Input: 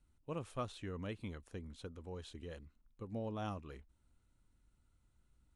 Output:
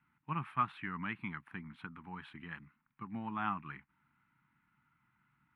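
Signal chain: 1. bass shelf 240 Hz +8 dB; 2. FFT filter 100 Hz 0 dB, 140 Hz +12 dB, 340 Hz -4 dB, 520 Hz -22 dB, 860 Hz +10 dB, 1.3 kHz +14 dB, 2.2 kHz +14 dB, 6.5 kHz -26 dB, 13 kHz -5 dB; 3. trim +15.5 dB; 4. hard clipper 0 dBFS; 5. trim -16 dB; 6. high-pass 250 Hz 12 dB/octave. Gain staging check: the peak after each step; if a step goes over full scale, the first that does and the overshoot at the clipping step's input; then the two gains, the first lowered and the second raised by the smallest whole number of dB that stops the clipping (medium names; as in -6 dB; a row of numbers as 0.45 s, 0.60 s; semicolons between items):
-25.5 dBFS, -18.0 dBFS, -2.5 dBFS, -2.5 dBFS, -18.5 dBFS, -19.0 dBFS; nothing clips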